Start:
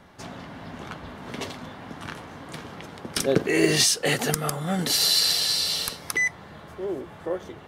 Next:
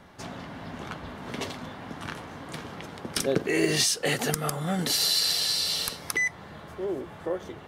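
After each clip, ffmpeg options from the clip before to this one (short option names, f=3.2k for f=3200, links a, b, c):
-af "acompressor=threshold=-27dB:ratio=1.5"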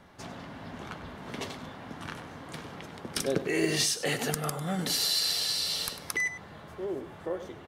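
-filter_complex "[0:a]asplit=2[a][b];[b]adelay=99.13,volume=-12dB,highshelf=f=4k:g=-2.23[c];[a][c]amix=inputs=2:normalize=0,volume=-3.5dB"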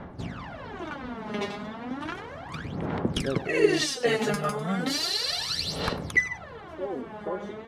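-af "aphaser=in_gain=1:out_gain=1:delay=4.9:decay=0.78:speed=0.34:type=sinusoidal,aemphasis=mode=reproduction:type=75fm,volume=2dB"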